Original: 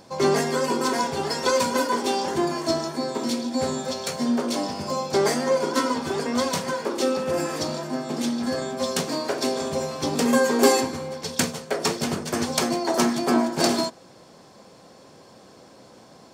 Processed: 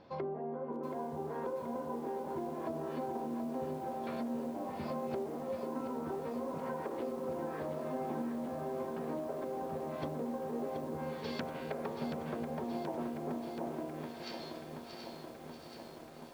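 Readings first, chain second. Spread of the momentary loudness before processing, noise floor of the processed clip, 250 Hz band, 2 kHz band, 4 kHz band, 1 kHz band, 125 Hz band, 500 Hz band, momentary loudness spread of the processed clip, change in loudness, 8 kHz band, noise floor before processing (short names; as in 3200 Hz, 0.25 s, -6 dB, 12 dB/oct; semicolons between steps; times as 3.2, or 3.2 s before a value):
7 LU, -50 dBFS, -14.0 dB, -20.5 dB, -24.5 dB, -14.0 dB, -11.5 dB, -13.5 dB, 6 LU, -15.5 dB, -31.5 dB, -50 dBFS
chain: high shelf 2400 Hz -4 dB; resonator 78 Hz, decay 0.96 s, harmonics all, mix 80%; dynamic EQ 660 Hz, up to +4 dB, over -43 dBFS, Q 0.87; LPF 4000 Hz 24 dB/oct; thin delay 0.633 s, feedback 43%, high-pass 2900 Hz, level -5 dB; treble ducked by the level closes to 740 Hz, closed at -30 dBFS; compressor 12:1, threshold -39 dBFS, peak gain reduction 17 dB; lo-fi delay 0.728 s, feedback 80%, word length 10-bit, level -7 dB; gain +3 dB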